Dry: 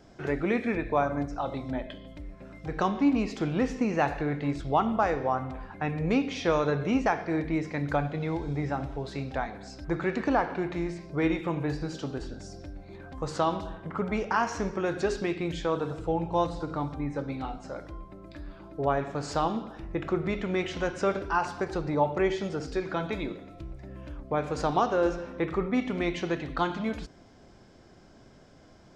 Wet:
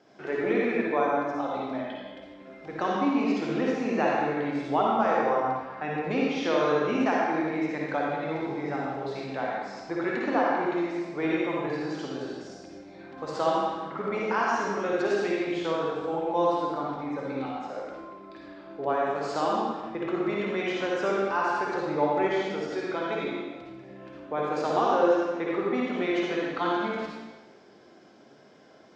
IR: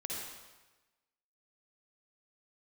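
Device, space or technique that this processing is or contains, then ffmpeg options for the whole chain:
supermarket ceiling speaker: -filter_complex "[0:a]highpass=270,lowpass=5.4k[a];[1:a]atrim=start_sample=2205[b];[a][b]afir=irnorm=-1:irlink=0,volume=1.5dB"

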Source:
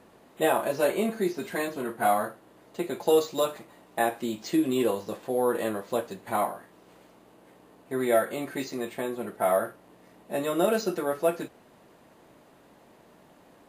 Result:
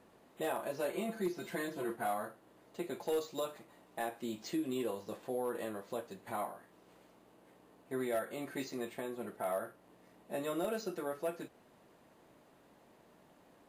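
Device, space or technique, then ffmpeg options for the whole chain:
clipper into limiter: -filter_complex "[0:a]asettb=1/sr,asplit=3[a][b][c];[a]atrim=end=0.934[d];[b]atrim=start=0.93:end=1.96,asetpts=PTS-STARTPTS,afade=t=in:d=0.004:c=qsin,afade=t=out:st=1.026:d=0.004:c=qsin,aecho=1:1:5.9:0.95,atrim=end_sample=45423[e];[c]atrim=start=1.956[f];[d][e]acrossfade=d=0.004:c1=hsin:c2=qsin[g];[g][f]acrossfade=d=0.004:c1=qsin:c2=hsin,asoftclip=type=hard:threshold=-15.5dB,alimiter=limit=-20.5dB:level=0:latency=1:release=313,volume=-7.5dB"

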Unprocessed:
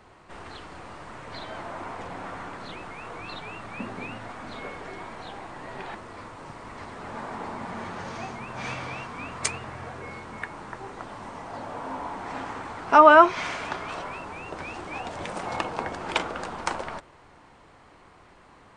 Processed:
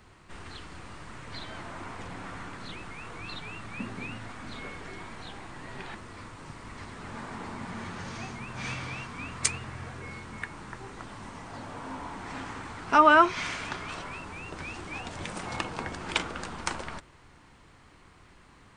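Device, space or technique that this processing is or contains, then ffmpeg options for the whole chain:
smiley-face EQ: -af "lowshelf=f=130:g=3.5,equalizer=f=660:t=o:w=1.7:g=-8.5,highshelf=f=8k:g=4.5"

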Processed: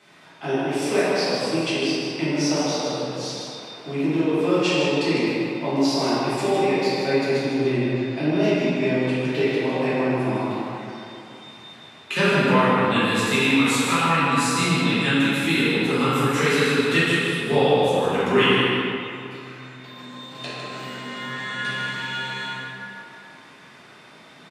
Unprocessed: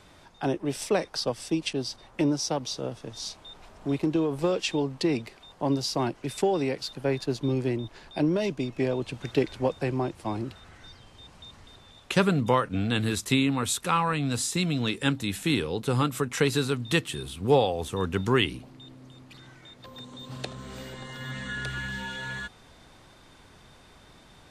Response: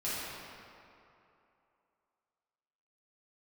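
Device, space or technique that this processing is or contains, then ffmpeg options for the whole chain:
PA in a hall: -filter_complex "[0:a]asettb=1/sr,asplit=3[a][b][c];[a]atrim=end=7.824[d];[b]atrim=start=7.82:end=8.32,asetpts=PTS-STARTPTS,afade=t=in:d=0.004:c=qsin,afade=t=out:st=0.496:d=0.004:c=qsin,lowpass=9.7k[e];[c]atrim=start=8.316[f];[d][e]acrossfade=d=0.004:c1=hsin:c2=qsin[g];[g][f]acrossfade=d=0.004:c1=qsin:c2=hsin,highpass=f=140:w=0.5412,highpass=f=140:w=1.3066,equalizer=f=2.2k:t=o:w=1.4:g=6.5,aecho=1:1:156:0.473[h];[1:a]atrim=start_sample=2205[i];[h][i]afir=irnorm=-1:irlink=0,volume=-1.5dB"

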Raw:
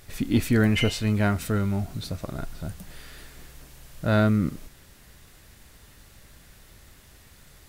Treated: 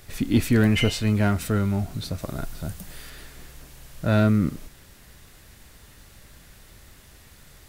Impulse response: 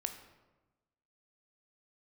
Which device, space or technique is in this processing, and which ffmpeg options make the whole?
one-band saturation: -filter_complex "[0:a]acrossover=split=360|3500[a][b][c];[b]asoftclip=type=tanh:threshold=-20.5dB[d];[a][d][c]amix=inputs=3:normalize=0,asettb=1/sr,asplit=3[e][f][g];[e]atrim=end=2.184[h];[f]atrim=start=2.18:end=3.1,asetpts=PTS-STARTPTS,afade=t=in:d=0.004:c=qsin,afade=t=out:st=0.916:d=0.004:c=qsin,highshelf=f=6.5k:g=5.5[i];[g]atrim=start=3.096[j];[h][i]acrossfade=d=0.004:c1=hsin:c2=qsin[k];[k][j]acrossfade=d=0.004:c1=qsin:c2=hsin,volume=2dB"

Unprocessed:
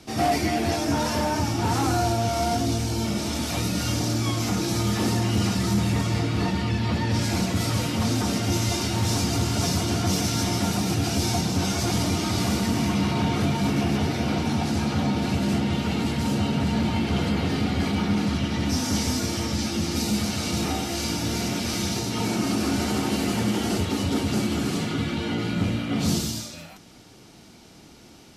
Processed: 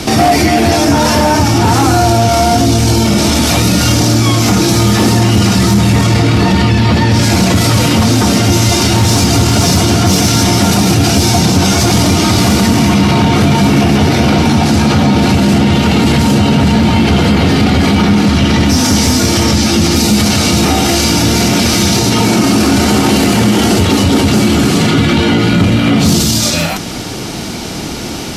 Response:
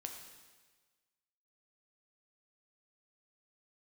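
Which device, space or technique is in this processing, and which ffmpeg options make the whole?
loud club master: -af "acompressor=threshold=-27dB:ratio=2,asoftclip=type=hard:threshold=-20.5dB,alimiter=level_in=29.5dB:limit=-1dB:release=50:level=0:latency=1,volume=-1.5dB"

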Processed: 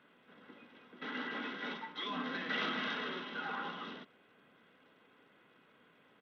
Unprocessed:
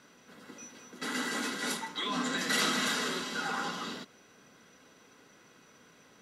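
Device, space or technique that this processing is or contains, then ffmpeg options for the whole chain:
Bluetooth headset: -af "highpass=f=140:p=1,aresample=8000,aresample=44100,volume=-5.5dB" -ar 32000 -c:a sbc -b:a 64k

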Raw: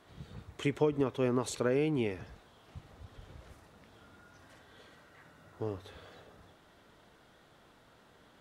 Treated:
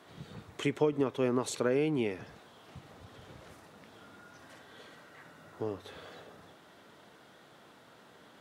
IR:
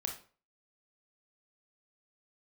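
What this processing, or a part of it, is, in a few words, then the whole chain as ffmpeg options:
parallel compression: -filter_complex "[0:a]asplit=2[a][b];[b]acompressor=threshold=-43dB:ratio=6,volume=-3dB[c];[a][c]amix=inputs=2:normalize=0,highpass=140"

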